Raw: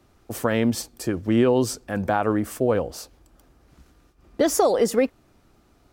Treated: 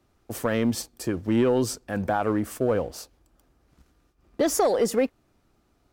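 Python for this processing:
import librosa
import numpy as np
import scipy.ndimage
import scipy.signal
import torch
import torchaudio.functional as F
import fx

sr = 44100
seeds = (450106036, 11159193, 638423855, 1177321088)

y = fx.leveller(x, sr, passes=1)
y = F.gain(torch.from_numpy(y), -5.5).numpy()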